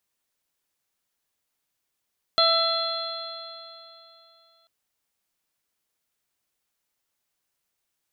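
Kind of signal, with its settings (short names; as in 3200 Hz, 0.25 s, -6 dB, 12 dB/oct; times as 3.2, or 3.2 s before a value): stretched partials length 2.29 s, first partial 662 Hz, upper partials 0/-14.5/-18.5/-1/3 dB, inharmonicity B 0.0023, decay 3.02 s, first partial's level -22 dB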